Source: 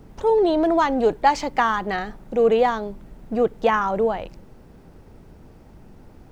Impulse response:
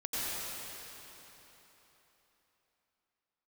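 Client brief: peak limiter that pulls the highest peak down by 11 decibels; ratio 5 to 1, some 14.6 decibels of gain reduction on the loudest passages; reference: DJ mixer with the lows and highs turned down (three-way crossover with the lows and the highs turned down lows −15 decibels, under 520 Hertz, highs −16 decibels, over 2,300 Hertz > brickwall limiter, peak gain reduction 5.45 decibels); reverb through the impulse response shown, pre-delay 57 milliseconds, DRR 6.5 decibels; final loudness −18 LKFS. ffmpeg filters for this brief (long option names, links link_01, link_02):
-filter_complex "[0:a]acompressor=threshold=-30dB:ratio=5,alimiter=level_in=4.5dB:limit=-24dB:level=0:latency=1,volume=-4.5dB,asplit=2[link_01][link_02];[1:a]atrim=start_sample=2205,adelay=57[link_03];[link_02][link_03]afir=irnorm=-1:irlink=0,volume=-13dB[link_04];[link_01][link_04]amix=inputs=2:normalize=0,acrossover=split=520 2300:gain=0.178 1 0.158[link_05][link_06][link_07];[link_05][link_06][link_07]amix=inputs=3:normalize=0,volume=25dB,alimiter=limit=-7.5dB:level=0:latency=1"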